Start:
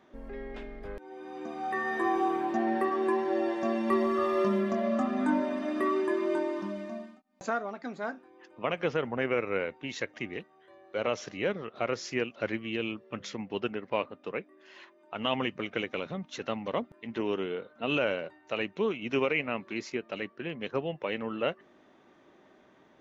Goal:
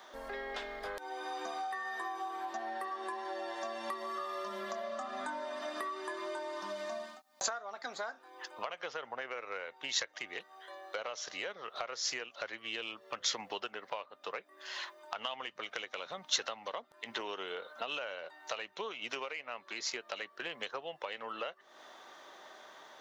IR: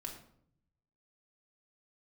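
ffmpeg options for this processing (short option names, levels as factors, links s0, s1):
-filter_complex "[0:a]acrossover=split=590 2800:gain=0.0631 1 0.112[s0][s1][s2];[s0][s1][s2]amix=inputs=3:normalize=0,acompressor=threshold=0.00398:ratio=16,aeval=exprs='0.282*(cos(1*acos(clip(val(0)/0.282,-1,1)))-cos(1*PI/2))+0.0158*(cos(4*acos(clip(val(0)/0.282,-1,1)))-cos(4*PI/2))':c=same,aexciter=amount=14:drive=2.4:freq=3700,volume=3.76"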